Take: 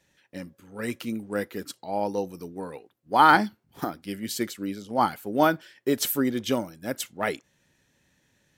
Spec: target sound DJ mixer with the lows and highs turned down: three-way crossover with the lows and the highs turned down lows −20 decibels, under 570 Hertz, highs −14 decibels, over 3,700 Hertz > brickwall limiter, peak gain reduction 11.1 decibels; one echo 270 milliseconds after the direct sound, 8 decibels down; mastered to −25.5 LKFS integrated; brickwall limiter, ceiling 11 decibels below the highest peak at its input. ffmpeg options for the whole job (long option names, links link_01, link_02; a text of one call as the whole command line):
ffmpeg -i in.wav -filter_complex "[0:a]alimiter=limit=-15.5dB:level=0:latency=1,acrossover=split=570 3700:gain=0.1 1 0.2[link_01][link_02][link_03];[link_01][link_02][link_03]amix=inputs=3:normalize=0,aecho=1:1:270:0.398,volume=14.5dB,alimiter=limit=-13dB:level=0:latency=1" out.wav